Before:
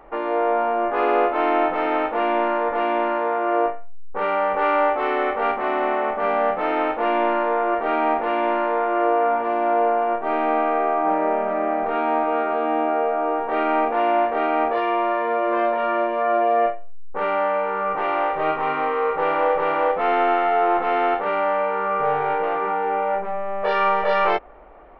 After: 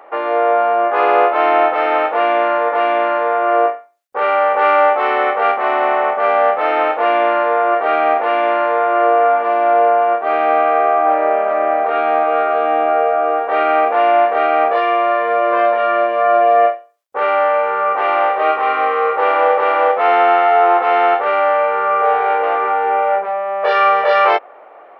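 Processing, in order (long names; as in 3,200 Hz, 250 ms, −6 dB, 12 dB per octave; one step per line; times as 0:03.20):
Chebyshev high-pass filter 590 Hz, order 2
notch filter 930 Hz, Q 18
level +8 dB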